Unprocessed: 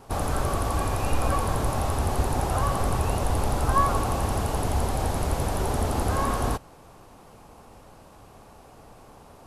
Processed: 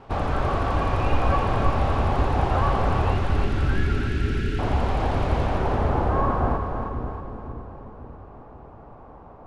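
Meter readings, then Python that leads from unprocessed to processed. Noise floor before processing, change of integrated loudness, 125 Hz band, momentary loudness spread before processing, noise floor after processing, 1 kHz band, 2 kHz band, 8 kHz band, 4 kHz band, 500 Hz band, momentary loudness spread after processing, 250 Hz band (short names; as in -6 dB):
-50 dBFS, +2.0 dB, +3.0 dB, 3 LU, -45 dBFS, +2.0 dB, +4.0 dB, under -15 dB, -1.0 dB, +2.5 dB, 14 LU, +3.0 dB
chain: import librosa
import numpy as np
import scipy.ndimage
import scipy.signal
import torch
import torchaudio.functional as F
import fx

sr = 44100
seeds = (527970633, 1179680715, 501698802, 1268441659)

y = fx.spec_erase(x, sr, start_s=3.13, length_s=1.46, low_hz=440.0, high_hz=1300.0)
y = fx.filter_sweep_lowpass(y, sr, from_hz=2800.0, to_hz=1200.0, start_s=5.39, end_s=6.13, q=1.0)
y = fx.echo_split(y, sr, split_hz=450.0, low_ms=529, high_ms=317, feedback_pct=52, wet_db=-6.0)
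y = F.gain(torch.from_numpy(y), 2.0).numpy()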